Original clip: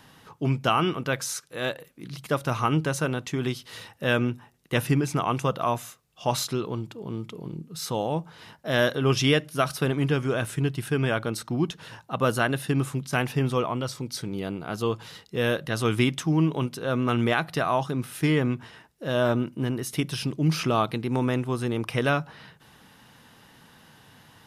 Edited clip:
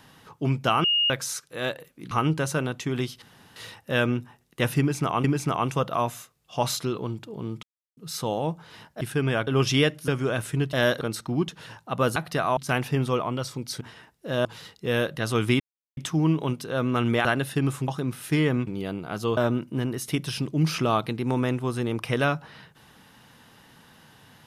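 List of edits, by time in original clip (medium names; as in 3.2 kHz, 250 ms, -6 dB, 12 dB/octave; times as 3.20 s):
0.84–1.10 s: bleep 2.85 kHz -19 dBFS
2.11–2.58 s: delete
3.69 s: insert room tone 0.34 s
4.92–5.37 s: loop, 2 plays
7.31–7.65 s: mute
8.69–8.97 s: swap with 10.77–11.23 s
9.58–10.12 s: delete
12.38–13.01 s: swap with 17.38–17.79 s
14.25–14.95 s: swap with 18.58–19.22 s
16.10 s: insert silence 0.37 s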